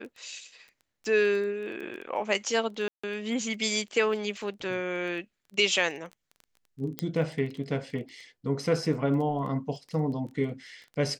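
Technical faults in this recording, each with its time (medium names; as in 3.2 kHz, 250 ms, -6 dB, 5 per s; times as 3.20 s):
crackle 11 per s -37 dBFS
2.88–3.04 s: dropout 155 ms
6.99 s: pop -14 dBFS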